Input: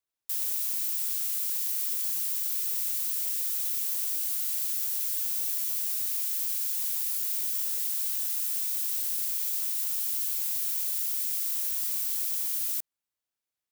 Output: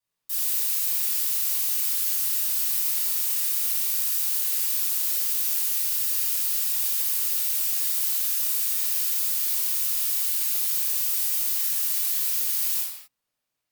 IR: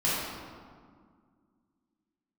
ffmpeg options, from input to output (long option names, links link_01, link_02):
-filter_complex "[1:a]atrim=start_sample=2205,afade=type=out:start_time=0.31:duration=0.01,atrim=end_sample=14112,asetrate=42336,aresample=44100[link_01];[0:a][link_01]afir=irnorm=-1:irlink=0,volume=-2.5dB"